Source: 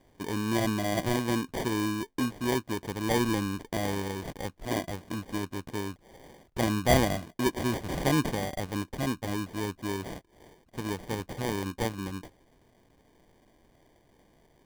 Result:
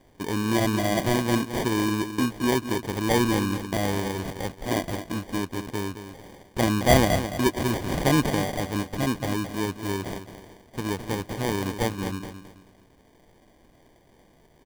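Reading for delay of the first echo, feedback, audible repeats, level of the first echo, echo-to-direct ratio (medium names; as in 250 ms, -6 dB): 217 ms, 31%, 3, -10.0 dB, -9.5 dB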